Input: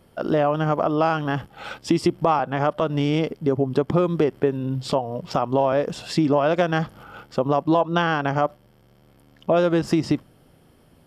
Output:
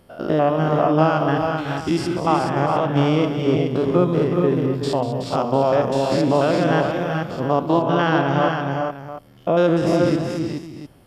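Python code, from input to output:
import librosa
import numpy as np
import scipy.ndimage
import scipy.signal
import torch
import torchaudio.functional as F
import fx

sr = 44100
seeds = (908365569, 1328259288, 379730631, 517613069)

y = fx.spec_steps(x, sr, hold_ms=100)
y = fx.echo_multitap(y, sr, ms=(72, 193, 373, 424, 701), db=(-16.5, -11.0, -8.0, -5.5, -13.5))
y = y * 10.0 ** (3.0 / 20.0)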